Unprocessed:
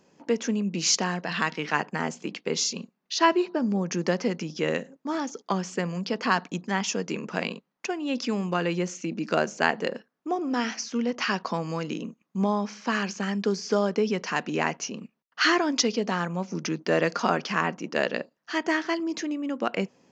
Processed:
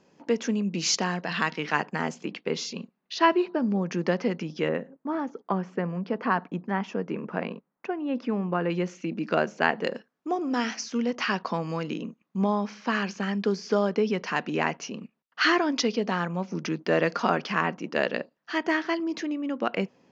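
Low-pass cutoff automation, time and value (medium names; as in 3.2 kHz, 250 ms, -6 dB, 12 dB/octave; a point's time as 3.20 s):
6.1 kHz
from 2.25 s 3.6 kHz
from 4.68 s 1.6 kHz
from 8.70 s 3.4 kHz
from 9.84 s 7.2 kHz
from 11.21 s 4.5 kHz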